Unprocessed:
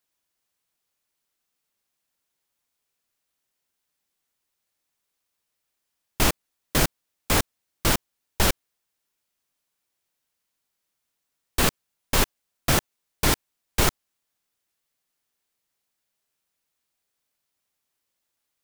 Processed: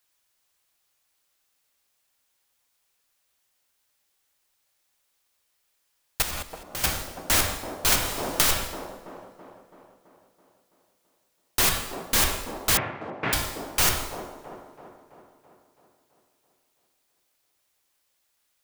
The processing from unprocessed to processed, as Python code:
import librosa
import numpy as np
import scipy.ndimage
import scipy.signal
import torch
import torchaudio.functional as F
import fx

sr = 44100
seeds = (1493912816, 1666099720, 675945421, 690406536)

p1 = fx.peak_eq(x, sr, hz=220.0, db=-8.0, octaves=2.6)
p2 = fx.rev_double_slope(p1, sr, seeds[0], early_s=0.84, late_s=2.5, knee_db=-25, drr_db=9.0)
p3 = 10.0 ** (-22.0 / 20.0) * (np.abs((p2 / 10.0 ** (-22.0 / 20.0) + 3.0) % 4.0 - 2.0) - 1.0)
p4 = fx.level_steps(p3, sr, step_db=13, at=(6.22, 6.84))
p5 = fx.cheby1_bandpass(p4, sr, low_hz=110.0, high_hz=2300.0, order=3, at=(12.77, 13.33))
p6 = p5 + fx.echo_wet_bandpass(p5, sr, ms=331, feedback_pct=56, hz=420.0, wet_db=-4, dry=0)
p7 = fx.band_squash(p6, sr, depth_pct=100, at=(7.92, 8.49))
y = F.gain(torch.from_numpy(p7), 7.0).numpy()